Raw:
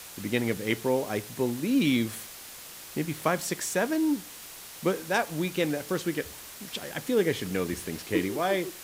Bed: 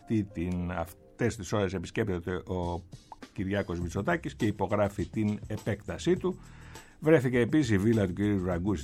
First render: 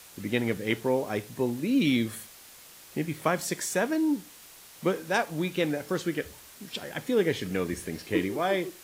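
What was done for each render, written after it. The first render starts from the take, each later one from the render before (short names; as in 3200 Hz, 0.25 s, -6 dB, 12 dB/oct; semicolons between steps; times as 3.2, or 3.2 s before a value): noise print and reduce 6 dB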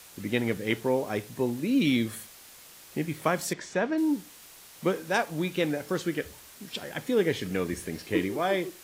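3.53–3.98 air absorption 150 m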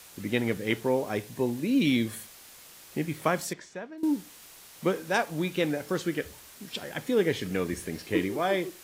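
1.14–2.23 notch 1300 Hz; 3.37–4.03 fade out quadratic, to -16 dB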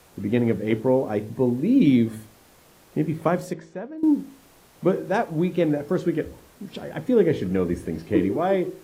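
tilt shelf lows +8.5 dB, about 1300 Hz; de-hum 54.31 Hz, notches 10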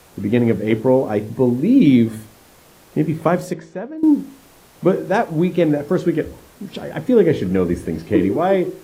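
gain +5.5 dB; limiter -3 dBFS, peak gain reduction 2 dB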